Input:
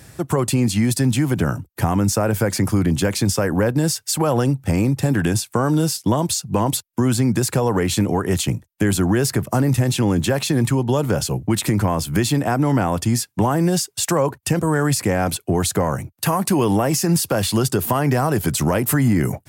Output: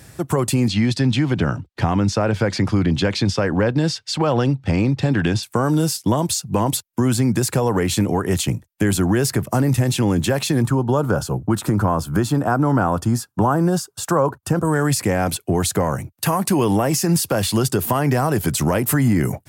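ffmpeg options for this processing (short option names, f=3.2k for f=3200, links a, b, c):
-filter_complex "[0:a]asettb=1/sr,asplit=3[a][b][c];[a]atrim=end=0.684[d];[b]atrim=start=0.68:end=5.43,asetpts=PTS-STARTPTS,afade=t=in:d=0.004:c=qsin,afade=t=out:st=4.746:d=0.004:c=qsin,lowpass=f=4k:t=q:w=1.6[e];[c]atrim=start=5.426[f];[d][e]acrossfade=d=0.004:c1=hsin:c2=qsin[g];[g][f]acrossfade=d=0.004:c1=qsin:c2=hsin,asettb=1/sr,asplit=3[h][i][j];[h]atrim=end=10.624[k];[i]atrim=start=10.62:end=14.65,asetpts=PTS-STARTPTS,afade=t=in:d=0.004:c=qsin,afade=t=out:st=4.026:d=0.004:c=qsin,highshelf=f=1.7k:t=q:w=3:g=-6[l];[j]atrim=start=14.646[m];[k][l]acrossfade=d=0.004:c1=hsin:c2=qsin[n];[n][m]acrossfade=d=0.004:c1=qsin:c2=hsin"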